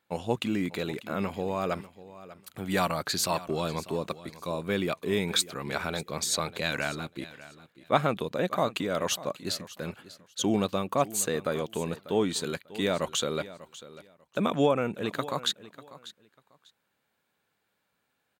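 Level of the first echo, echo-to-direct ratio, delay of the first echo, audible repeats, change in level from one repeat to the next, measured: −17.0 dB, −17.0 dB, 594 ms, 2, −14.0 dB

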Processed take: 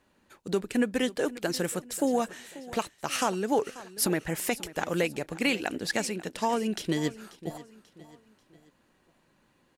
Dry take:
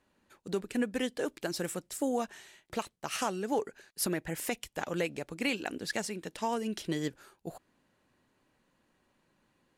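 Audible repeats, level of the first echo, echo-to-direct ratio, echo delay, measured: 3, −17.5 dB, −16.5 dB, 538 ms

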